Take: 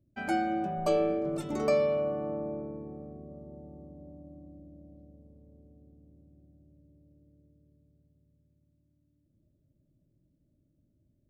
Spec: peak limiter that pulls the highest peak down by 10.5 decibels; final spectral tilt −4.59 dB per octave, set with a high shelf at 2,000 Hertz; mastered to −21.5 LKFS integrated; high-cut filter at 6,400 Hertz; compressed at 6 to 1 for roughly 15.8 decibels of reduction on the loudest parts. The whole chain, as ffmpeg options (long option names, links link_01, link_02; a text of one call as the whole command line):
ffmpeg -i in.wav -af "lowpass=6400,highshelf=frequency=2000:gain=7,acompressor=threshold=-39dB:ratio=6,volume=27dB,alimiter=limit=-11.5dB:level=0:latency=1" out.wav